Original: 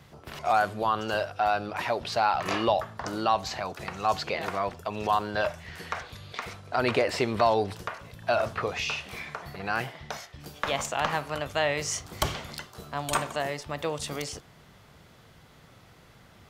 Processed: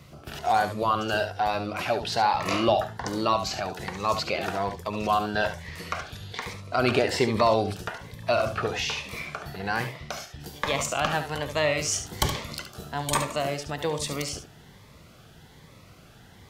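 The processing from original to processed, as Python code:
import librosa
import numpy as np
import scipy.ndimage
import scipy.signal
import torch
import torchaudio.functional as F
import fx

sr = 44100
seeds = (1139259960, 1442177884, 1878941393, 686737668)

p1 = x + fx.echo_single(x, sr, ms=71, db=-9.5, dry=0)
p2 = fx.notch_cascade(p1, sr, direction='rising', hz=1.2)
y = p2 * 10.0 ** (4.0 / 20.0)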